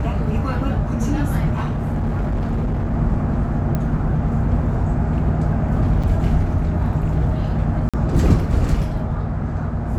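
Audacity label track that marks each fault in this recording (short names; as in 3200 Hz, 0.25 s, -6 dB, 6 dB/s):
1.530000	2.930000	clipped -17.5 dBFS
3.750000	3.750000	pop -11 dBFS
6.030000	6.040000	gap 5.7 ms
7.890000	7.940000	gap 46 ms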